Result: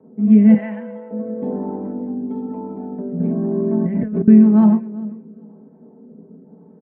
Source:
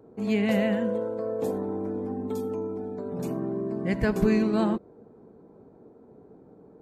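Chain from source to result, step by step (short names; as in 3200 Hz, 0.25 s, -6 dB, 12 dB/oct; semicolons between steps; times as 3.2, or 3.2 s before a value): steep low-pass 2900 Hz 48 dB/oct; comb 4.6 ms, depth 62%; feedback echo 0.394 s, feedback 20%, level -19.5 dB; rotary speaker horn 1 Hz; 0.54–1.11 band-pass 2100 Hz, Q 0.83; reverb, pre-delay 3 ms, DRR 3.5 dB; 3.2–4.28 negative-ratio compressor -14 dBFS, ratio -1; gain -5.5 dB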